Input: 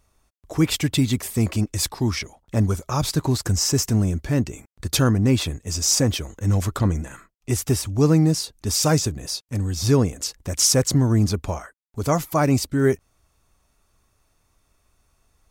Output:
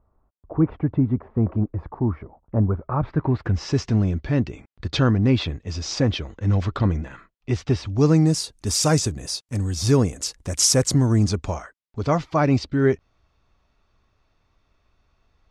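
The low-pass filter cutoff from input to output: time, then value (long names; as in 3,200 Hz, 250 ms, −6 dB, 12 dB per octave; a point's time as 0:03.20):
low-pass filter 24 dB per octave
0:02.59 1,200 Hz
0:03.34 2,200 Hz
0:03.72 4,300 Hz
0:07.83 4,300 Hz
0:08.39 11,000 Hz
0:10.96 11,000 Hz
0:12.07 4,600 Hz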